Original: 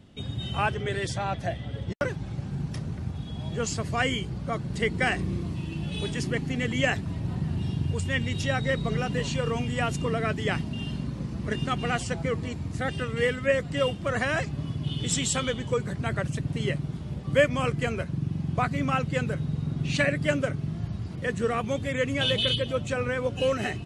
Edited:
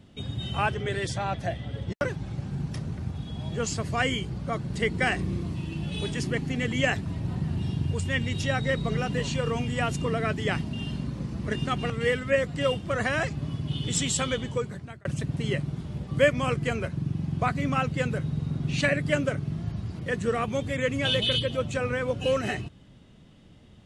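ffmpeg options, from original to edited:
ffmpeg -i in.wav -filter_complex "[0:a]asplit=3[link_01][link_02][link_03];[link_01]atrim=end=11.902[link_04];[link_02]atrim=start=13.058:end=16.21,asetpts=PTS-STARTPTS,afade=type=out:start_time=2.552:duration=0.6[link_05];[link_03]atrim=start=16.21,asetpts=PTS-STARTPTS,afade=type=in:duration=0.004:curve=hsin[link_06];[link_05][link_06]concat=n=2:v=0:a=1[link_07];[link_04][link_07]acrossfade=duration=0.004:curve1=hsin:curve2=hsin" out.wav

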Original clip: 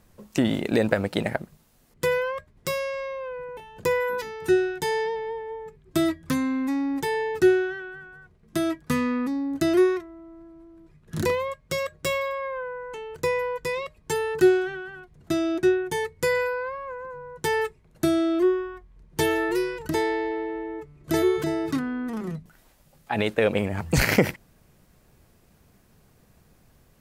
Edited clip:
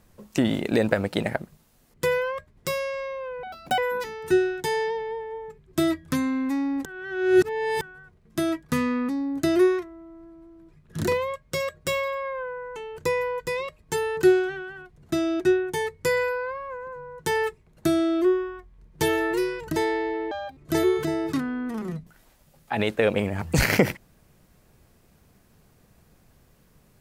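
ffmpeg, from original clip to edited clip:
ffmpeg -i in.wav -filter_complex "[0:a]asplit=7[link_01][link_02][link_03][link_04][link_05][link_06][link_07];[link_01]atrim=end=3.434[link_08];[link_02]atrim=start=3.43:end=3.96,asetpts=PTS-STARTPTS,asetrate=66591,aresample=44100[link_09];[link_03]atrim=start=3.956:end=7.032[link_10];[link_04]atrim=start=7.028:end=7.992,asetpts=PTS-STARTPTS,areverse[link_11];[link_05]atrim=start=7.988:end=20.494[link_12];[link_06]atrim=start=20.49:end=20.96,asetpts=PTS-STARTPTS,asetrate=80262,aresample=44100,atrim=end_sample=11388,asetpts=PTS-STARTPTS[link_13];[link_07]atrim=start=20.956[link_14];[link_08][link_09]acrossfade=duration=0.004:curve1=hsin:curve2=hsin[link_15];[link_15][link_10]acrossfade=duration=0.004:curve1=hsin:curve2=hsin[link_16];[link_16][link_11]acrossfade=duration=0.004:curve1=hsin:curve2=hsin[link_17];[link_17][link_12]acrossfade=duration=0.004:curve1=hsin:curve2=hsin[link_18];[link_18][link_13]acrossfade=duration=0.004:curve1=hsin:curve2=hsin[link_19];[link_19][link_14]acrossfade=duration=0.004:curve1=hsin:curve2=hsin" out.wav

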